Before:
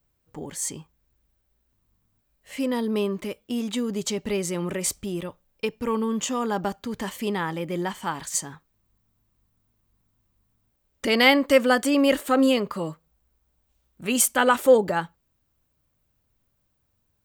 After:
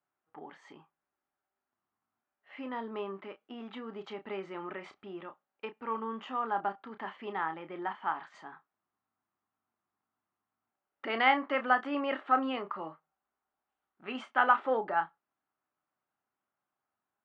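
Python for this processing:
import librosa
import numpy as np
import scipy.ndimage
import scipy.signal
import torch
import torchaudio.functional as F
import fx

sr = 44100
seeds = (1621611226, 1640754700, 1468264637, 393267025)

y = fx.cabinet(x, sr, low_hz=400.0, low_slope=12, high_hz=2600.0, hz=(510.0, 790.0, 1300.0, 2400.0), db=(-9, 6, 6, -4))
y = fx.doubler(y, sr, ms=31.0, db=-9.5)
y = y * librosa.db_to_amplitude(-7.0)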